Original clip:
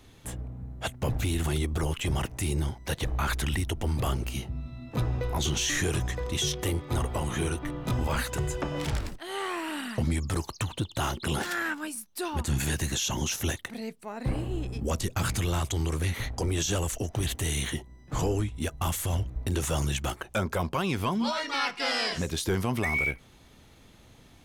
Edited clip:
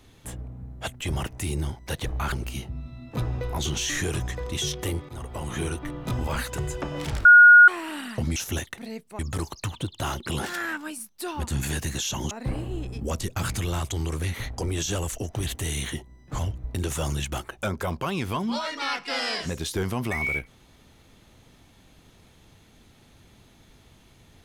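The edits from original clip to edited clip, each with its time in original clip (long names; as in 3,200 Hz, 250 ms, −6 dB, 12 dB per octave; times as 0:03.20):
0:01.00–0:01.99: remove
0:03.31–0:04.12: remove
0:06.89–0:07.39: fade in, from −14 dB
0:09.05–0:09.48: beep over 1,440 Hz −7.5 dBFS
0:13.28–0:14.11: move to 0:10.16
0:18.19–0:19.11: remove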